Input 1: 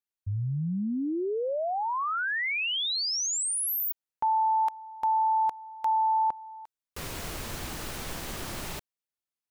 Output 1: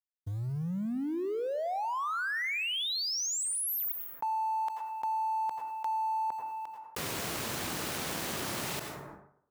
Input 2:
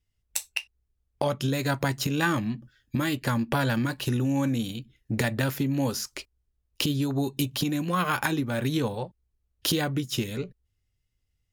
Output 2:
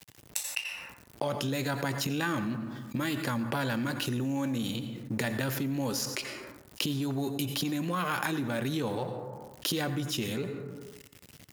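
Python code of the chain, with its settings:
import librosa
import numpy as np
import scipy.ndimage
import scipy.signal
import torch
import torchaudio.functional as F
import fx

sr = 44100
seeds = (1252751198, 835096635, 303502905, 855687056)

y = fx.law_mismatch(x, sr, coded='A')
y = scipy.signal.sosfilt(scipy.signal.butter(2, 130.0, 'highpass', fs=sr, output='sos'), y)
y = fx.rev_plate(y, sr, seeds[0], rt60_s=0.64, hf_ratio=0.5, predelay_ms=75, drr_db=14.5)
y = fx.env_flatten(y, sr, amount_pct=70)
y = F.gain(torch.from_numpy(y), -6.5).numpy()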